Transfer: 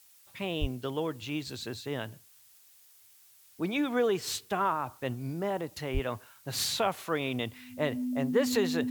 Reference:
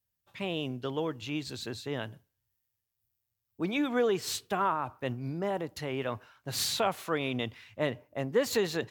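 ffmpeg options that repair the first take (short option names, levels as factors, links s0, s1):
-filter_complex "[0:a]bandreject=f=250:w=30,asplit=3[s0][s1][s2];[s0]afade=t=out:st=0.6:d=0.02[s3];[s1]highpass=f=140:w=0.5412,highpass=f=140:w=1.3066,afade=t=in:st=0.6:d=0.02,afade=t=out:st=0.72:d=0.02[s4];[s2]afade=t=in:st=0.72:d=0.02[s5];[s3][s4][s5]amix=inputs=3:normalize=0,asplit=3[s6][s7][s8];[s6]afade=t=out:st=5.93:d=0.02[s9];[s7]highpass=f=140:w=0.5412,highpass=f=140:w=1.3066,afade=t=in:st=5.93:d=0.02,afade=t=out:st=6.05:d=0.02[s10];[s8]afade=t=in:st=6.05:d=0.02[s11];[s9][s10][s11]amix=inputs=3:normalize=0,afftdn=nr=24:nf=-59"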